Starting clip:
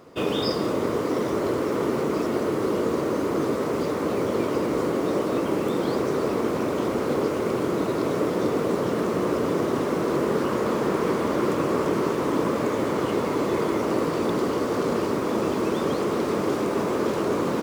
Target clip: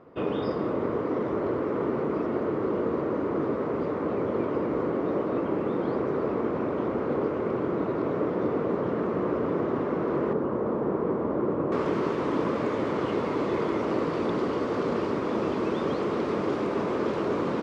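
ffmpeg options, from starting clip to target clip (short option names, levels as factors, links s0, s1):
-af "asetnsamples=n=441:p=0,asendcmd='10.33 lowpass f 1000;11.72 lowpass f 3800',lowpass=1800,volume=0.708"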